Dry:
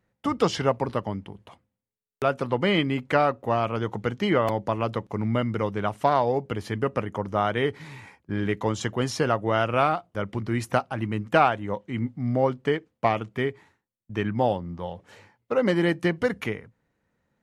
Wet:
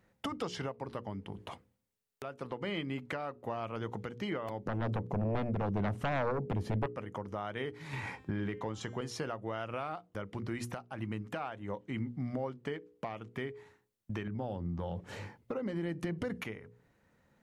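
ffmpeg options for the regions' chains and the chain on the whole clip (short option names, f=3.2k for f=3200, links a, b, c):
-filter_complex "[0:a]asettb=1/sr,asplit=3[a][b][c];[a]atrim=end=4.664[d];[b]atrim=start=4.66:end=6.86,asetpts=PTS-STARTPTS,afade=t=in:d=0.004:c=qsin,afade=t=out:st=2.196:d=0.004:c=qsin,tiltshelf=f=650:g=8.5,aeval=exprs='0.473*sin(PI/2*3.55*val(0)/0.473)':c=same[e];[c]atrim=start=6.856[f];[d][e]acrossfade=d=0.004:c1=hsin:c2=qsin[g];[g][f]acrossfade=d=0.004:c1=qsin:c2=hsin,asettb=1/sr,asplit=3[h][i][j];[h]atrim=end=7.934[k];[i]atrim=start=7.93:end=9.01,asetpts=PTS-STARTPTS,afade=t=in:d=0.004:c=qsin,afade=t=out:st=1.076:d=0.004:c=qsin,highshelf=f=4.8k:g=-7.5,bandreject=f=262.1:t=h:w=4,bandreject=f=524.2:t=h:w=4,bandreject=f=786.3:t=h:w=4,bandreject=f=1.0484k:t=h:w=4,bandreject=f=1.3105k:t=h:w=4,bandreject=f=1.5726k:t=h:w=4,bandreject=f=1.8347k:t=h:w=4,bandreject=f=2.0968k:t=h:w=4,bandreject=f=2.3589k:t=h:w=4,bandreject=f=2.621k:t=h:w=4,bandreject=f=2.8831k:t=h:w=4,bandreject=f=3.1452k:t=h:w=4,bandreject=f=3.4073k:t=h:w=4,bandreject=f=3.6694k:t=h:w=4,bandreject=f=3.9315k:t=h:w=4,bandreject=f=4.1936k:t=h:w=4,bandreject=f=4.4557k:t=h:w=4,bandreject=f=4.7178k:t=h:w=4,bandreject=f=4.9799k:t=h:w=4,bandreject=f=5.242k:t=h:w=4,bandreject=f=5.5041k:t=h:w=4,bandreject=f=5.7662k:t=h:w=4,bandreject=f=6.0283k:t=h:w=4,bandreject=f=6.2904k:t=h:w=4,bandreject=f=6.5525k:t=h:w=4,bandreject=f=6.8146k:t=h:w=4,bandreject=f=7.0767k:t=h:w=4,bandreject=f=7.3388k:t=h:w=4,bandreject=f=7.6009k:t=h:w=4,bandreject=f=7.863k:t=h:w=4,bandreject=f=8.1251k:t=h:w=4,bandreject=f=8.3872k:t=h:w=4,bandreject=f=8.6493k:t=h:w=4,bandreject=f=8.9114k:t=h:w=4,bandreject=f=9.1735k:t=h:w=4,bandreject=f=9.4356k:t=h:w=4,bandreject=f=9.6977k:t=h:w=4,acontrast=81[l];[j]atrim=start=9.006[m];[k][l]acrossfade=d=0.004:c1=hsin:c2=qsin[n];[n][m]acrossfade=d=0.004:c1=qsin:c2=hsin,asettb=1/sr,asplit=3[o][p][q];[o]atrim=end=14.274[r];[p]atrim=start=14.27:end=16.35,asetpts=PTS-STARTPTS,afade=t=in:d=0.004:c=qsin,afade=t=out:st=2.076:d=0.004:c=qsin,lowshelf=f=360:g=10,acompressor=threshold=-28dB:ratio=2.5:attack=3.2:release=140:knee=1:detection=peak[s];[q]atrim=start=16.346[t];[r][s]acrossfade=d=0.004:c1=hsin:c2=qsin[u];[u][t]acrossfade=d=0.004:c1=qsin:c2=hsin,bandreject=f=60:t=h:w=6,bandreject=f=120:t=h:w=6,bandreject=f=180:t=h:w=6,bandreject=f=240:t=h:w=6,bandreject=f=300:t=h:w=6,bandreject=f=360:t=h:w=6,bandreject=f=420:t=h:w=6,bandreject=f=480:t=h:w=6,acompressor=threshold=-41dB:ratio=3,alimiter=level_in=5.5dB:limit=-24dB:level=0:latency=1:release=444,volume=-5.5dB,volume=4.5dB"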